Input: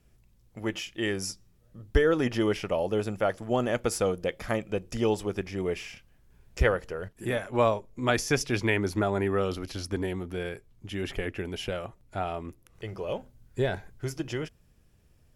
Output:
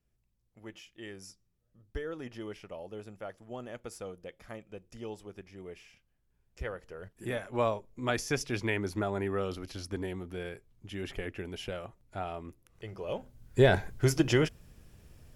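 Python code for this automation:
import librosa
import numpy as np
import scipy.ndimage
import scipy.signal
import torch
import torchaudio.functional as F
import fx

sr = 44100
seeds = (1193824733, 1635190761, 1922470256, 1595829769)

y = fx.gain(x, sr, db=fx.line((6.6, -15.5), (7.23, -5.5), (12.98, -5.5), (13.76, 7.5)))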